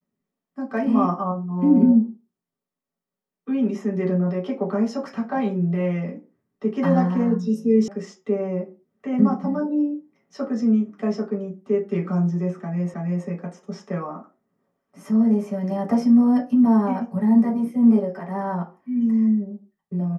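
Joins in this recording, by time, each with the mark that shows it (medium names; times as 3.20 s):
7.88 s: sound stops dead
12.94 s: repeat of the last 0.32 s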